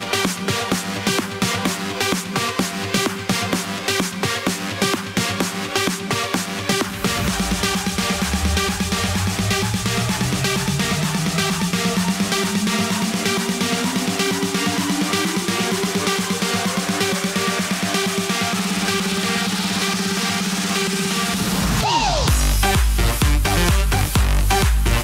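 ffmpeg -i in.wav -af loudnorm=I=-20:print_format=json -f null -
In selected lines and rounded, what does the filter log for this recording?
"input_i" : "-19.5",
"input_tp" : "-7.9",
"input_lra" : "2.9",
"input_thresh" : "-29.5",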